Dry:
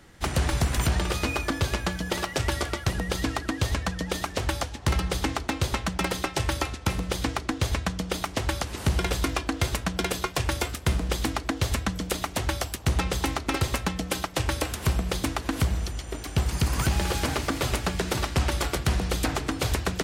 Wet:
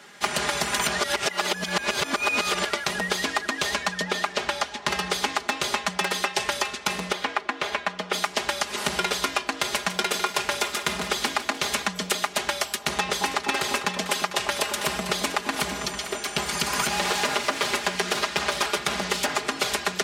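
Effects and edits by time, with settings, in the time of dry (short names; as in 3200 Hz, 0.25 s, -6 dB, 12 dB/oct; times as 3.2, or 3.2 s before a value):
0.99–2.65 reverse
4.02–4.9 high shelf 6400 Hz -> 9400 Hz -11 dB
7.12–8.13 tone controls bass -9 dB, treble -14 dB
9.58–11.87 lo-fi delay 0.149 s, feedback 55%, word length 9-bit, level -11 dB
12.82–16.18 echo with dull and thin repeats by turns 0.224 s, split 1000 Hz, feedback 53%, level -8 dB
16.99–19.29 Doppler distortion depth 0.85 ms
whole clip: weighting filter A; compressor, threshold -29 dBFS; comb 4.9 ms, depth 77%; gain +6.5 dB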